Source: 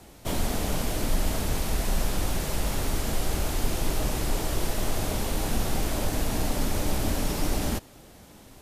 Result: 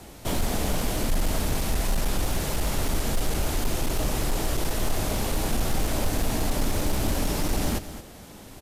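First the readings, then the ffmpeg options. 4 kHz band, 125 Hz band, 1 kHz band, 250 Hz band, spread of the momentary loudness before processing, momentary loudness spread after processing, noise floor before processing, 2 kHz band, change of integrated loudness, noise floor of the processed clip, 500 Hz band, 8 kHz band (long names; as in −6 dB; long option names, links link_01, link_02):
+1.5 dB, +1.5 dB, +1.5 dB, +1.5 dB, 1 LU, 2 LU, −51 dBFS, +1.5 dB, +1.5 dB, −45 dBFS, +1.5 dB, +1.5 dB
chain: -filter_complex "[0:a]asplit=2[link_01][link_02];[link_02]acompressor=threshold=-36dB:ratio=4,volume=-2dB[link_03];[link_01][link_03]amix=inputs=2:normalize=0,asoftclip=type=hard:threshold=-18.5dB,aecho=1:1:219:0.237"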